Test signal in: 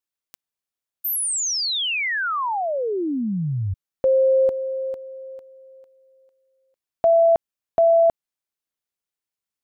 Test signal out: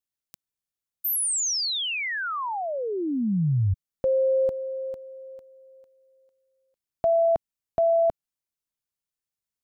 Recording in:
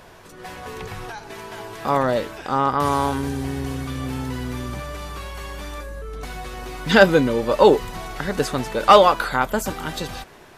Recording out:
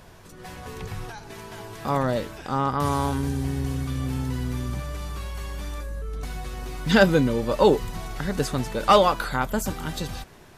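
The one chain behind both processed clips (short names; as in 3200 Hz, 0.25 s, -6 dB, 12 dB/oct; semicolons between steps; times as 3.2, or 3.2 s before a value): tone controls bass +8 dB, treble +4 dB; gain -5.5 dB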